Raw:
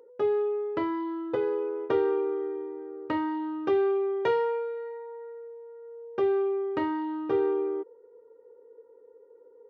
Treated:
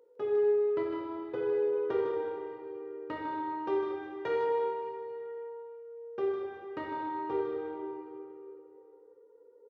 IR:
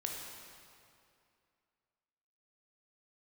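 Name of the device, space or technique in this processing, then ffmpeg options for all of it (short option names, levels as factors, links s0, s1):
cave: -filter_complex "[0:a]aecho=1:1:154:0.398[s0];[1:a]atrim=start_sample=2205[s1];[s0][s1]afir=irnorm=-1:irlink=0,volume=0.473"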